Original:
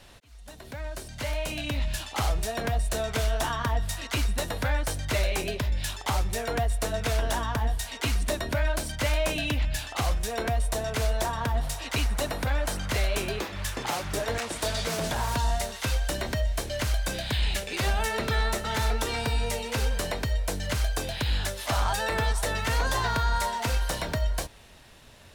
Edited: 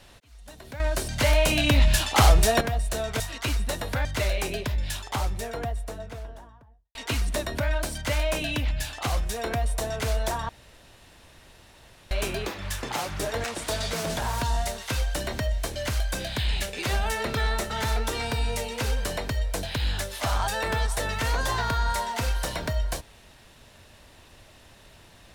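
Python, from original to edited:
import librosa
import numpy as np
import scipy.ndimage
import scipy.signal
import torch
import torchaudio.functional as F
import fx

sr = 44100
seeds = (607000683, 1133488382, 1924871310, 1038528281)

y = fx.studio_fade_out(x, sr, start_s=5.77, length_s=2.12)
y = fx.edit(y, sr, fx.clip_gain(start_s=0.8, length_s=1.81, db=10.0),
    fx.cut(start_s=3.2, length_s=0.69),
    fx.cut(start_s=4.74, length_s=0.25),
    fx.room_tone_fill(start_s=11.43, length_s=1.62),
    fx.cut(start_s=20.57, length_s=0.52), tone=tone)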